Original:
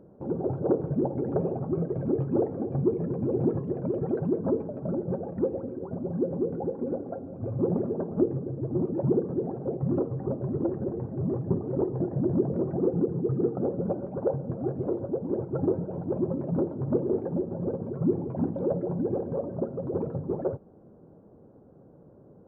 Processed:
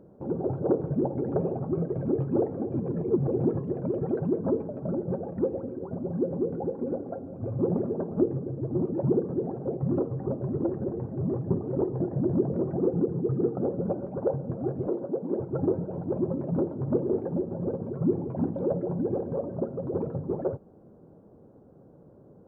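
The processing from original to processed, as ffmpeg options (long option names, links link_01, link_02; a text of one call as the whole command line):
ffmpeg -i in.wav -filter_complex "[0:a]asettb=1/sr,asplit=3[link_01][link_02][link_03];[link_01]atrim=end=14.884[link_04];[link_02]atrim=start=14.88:end=15.4,asetpts=PTS-STARTPTS,afade=type=in:duration=0.004:curve=qsin,afade=type=out:start_time=0.516:duration=0.004:curve=qsin,highpass=frequency=160:width=0.5412,highpass=frequency=160:width=1.3066[link_05];[link_03]atrim=start=15.396[link_06];[link_04][link_05]acrossfade=duration=0.004:curve1=hsin:curve2=qsin[link_07];[link_07][link_06]acrossfade=duration=0.004:curve1=qsin:curve2=hsin,asplit=3[link_08][link_09][link_10];[link_08]atrim=end=2.742[link_11];[link_09]atrim=start=2.738:end=3.282,asetpts=PTS-STARTPTS,areverse[link_12];[link_10]atrim=start=3.278[link_13];[link_11][link_12]acrossfade=duration=0.004:curve1=hsin:curve2=hsin[link_14];[link_14][link_13]acrossfade=duration=0.004:curve1=hsin:curve2=hsin" out.wav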